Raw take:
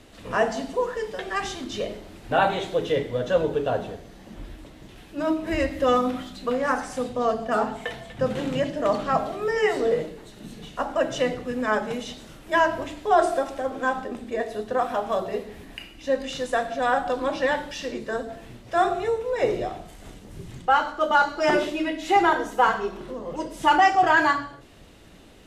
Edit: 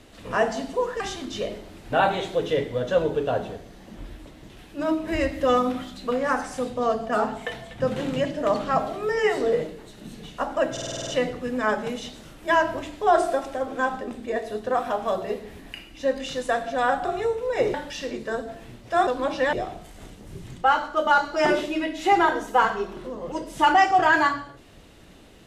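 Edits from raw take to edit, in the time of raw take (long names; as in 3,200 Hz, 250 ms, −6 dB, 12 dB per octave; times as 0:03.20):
0:01.00–0:01.39: remove
0:11.11: stutter 0.05 s, 8 plays
0:17.09–0:17.55: swap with 0:18.88–0:19.57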